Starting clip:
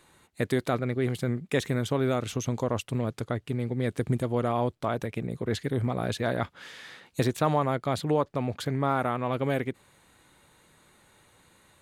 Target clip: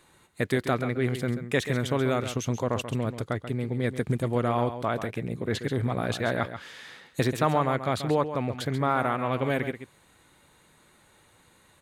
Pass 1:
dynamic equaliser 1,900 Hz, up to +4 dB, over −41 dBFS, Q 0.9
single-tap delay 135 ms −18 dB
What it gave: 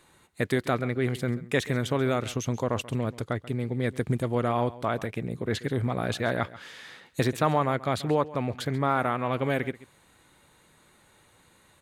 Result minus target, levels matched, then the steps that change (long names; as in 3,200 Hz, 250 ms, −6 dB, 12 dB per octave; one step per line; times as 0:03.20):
echo-to-direct −7.5 dB
change: single-tap delay 135 ms −10.5 dB